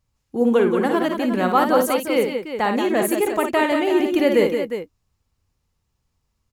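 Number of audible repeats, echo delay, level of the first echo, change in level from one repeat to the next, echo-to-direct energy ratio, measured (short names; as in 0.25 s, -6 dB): 3, 55 ms, -6.5 dB, no steady repeat, -2.5 dB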